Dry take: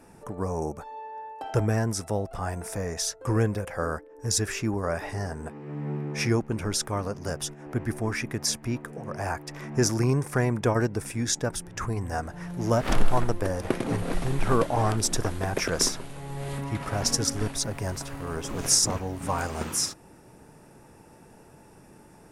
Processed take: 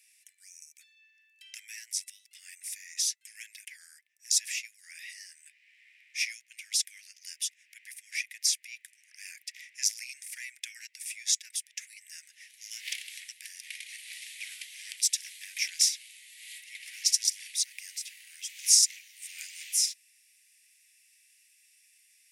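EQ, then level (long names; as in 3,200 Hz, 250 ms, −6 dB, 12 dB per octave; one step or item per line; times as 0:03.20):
Butterworth high-pass 2,000 Hz 72 dB per octave
+1.0 dB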